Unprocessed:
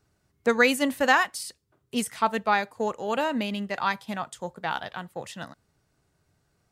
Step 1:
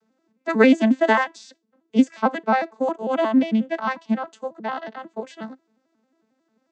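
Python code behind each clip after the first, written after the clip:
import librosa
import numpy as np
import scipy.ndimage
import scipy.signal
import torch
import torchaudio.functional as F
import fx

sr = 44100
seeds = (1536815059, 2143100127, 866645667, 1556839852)

y = fx.vocoder_arp(x, sr, chord='minor triad', root=57, every_ms=90)
y = y * 10.0 ** (6.5 / 20.0)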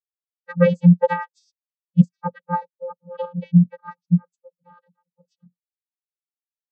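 y = fx.bin_expand(x, sr, power=3.0)
y = fx.vocoder(y, sr, bands=16, carrier='square', carrier_hz=175.0)
y = y * 10.0 ** (7.0 / 20.0)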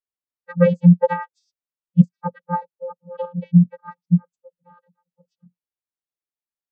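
y = fx.high_shelf(x, sr, hz=2200.0, db=-8.5)
y = y * 10.0 ** (1.0 / 20.0)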